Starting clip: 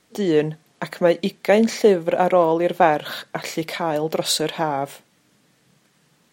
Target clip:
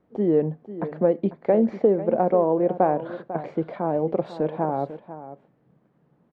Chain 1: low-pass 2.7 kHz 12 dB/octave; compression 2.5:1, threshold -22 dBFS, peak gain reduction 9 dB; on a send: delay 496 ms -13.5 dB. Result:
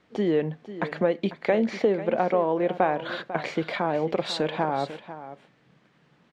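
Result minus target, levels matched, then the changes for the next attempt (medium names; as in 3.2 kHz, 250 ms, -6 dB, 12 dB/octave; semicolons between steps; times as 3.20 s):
2 kHz band +13.0 dB; compression: peak gain reduction +4.5 dB
change: low-pass 770 Hz 12 dB/octave; change: compression 2.5:1, threshold -15.5 dBFS, peak gain reduction 4.5 dB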